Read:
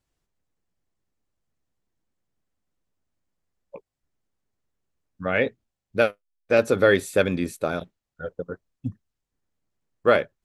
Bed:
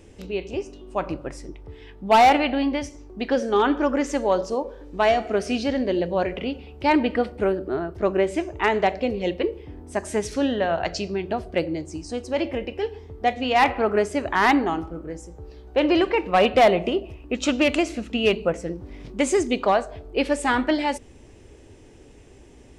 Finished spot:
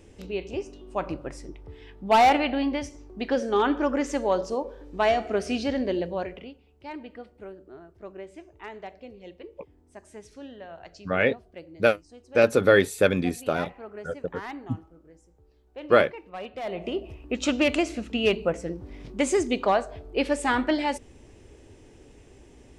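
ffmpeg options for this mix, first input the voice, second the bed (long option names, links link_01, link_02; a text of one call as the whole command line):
ffmpeg -i stem1.wav -i stem2.wav -filter_complex "[0:a]adelay=5850,volume=0dB[link_01];[1:a]volume=14dB,afade=type=out:start_time=5.87:duration=0.7:silence=0.149624,afade=type=in:start_time=16.63:duration=0.5:silence=0.141254[link_02];[link_01][link_02]amix=inputs=2:normalize=0" out.wav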